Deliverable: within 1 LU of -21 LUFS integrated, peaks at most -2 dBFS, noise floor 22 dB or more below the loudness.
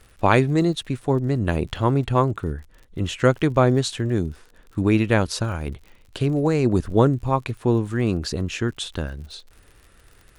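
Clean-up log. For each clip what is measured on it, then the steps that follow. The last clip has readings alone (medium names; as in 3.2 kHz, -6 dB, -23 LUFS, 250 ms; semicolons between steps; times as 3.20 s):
tick rate 57 per s; loudness -22.0 LUFS; peak level -2.5 dBFS; loudness target -21.0 LUFS
-> de-click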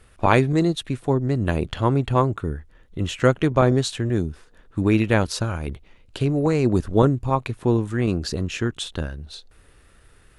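tick rate 0.19 per s; loudness -22.5 LUFS; peak level -2.5 dBFS; loudness target -21.0 LUFS
-> trim +1.5 dB; peak limiter -2 dBFS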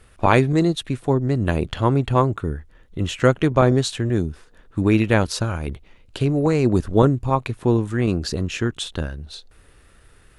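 loudness -21.0 LUFS; peak level -2.0 dBFS; noise floor -53 dBFS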